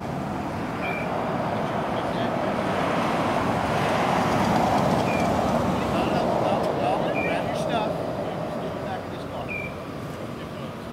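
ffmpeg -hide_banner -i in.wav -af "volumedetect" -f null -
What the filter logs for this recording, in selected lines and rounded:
mean_volume: -25.0 dB
max_volume: -7.9 dB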